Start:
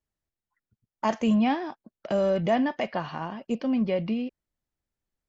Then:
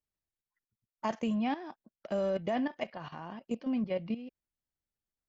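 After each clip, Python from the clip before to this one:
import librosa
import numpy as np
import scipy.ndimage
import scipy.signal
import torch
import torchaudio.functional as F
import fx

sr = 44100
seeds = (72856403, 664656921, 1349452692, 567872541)

y = fx.level_steps(x, sr, step_db=13)
y = y * 10.0 ** (-4.0 / 20.0)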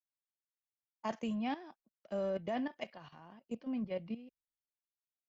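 y = fx.band_widen(x, sr, depth_pct=70)
y = y * 10.0 ** (-5.5 / 20.0)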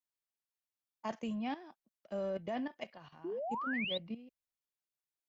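y = fx.spec_paint(x, sr, seeds[0], shape='rise', start_s=3.24, length_s=0.74, low_hz=320.0, high_hz=4000.0, level_db=-37.0)
y = y * 10.0 ** (-1.5 / 20.0)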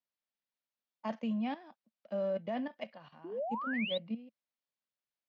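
y = fx.cabinet(x, sr, low_hz=140.0, low_slope=12, high_hz=4900.0, hz=(220.0, 370.0, 560.0), db=(6, -7, 5))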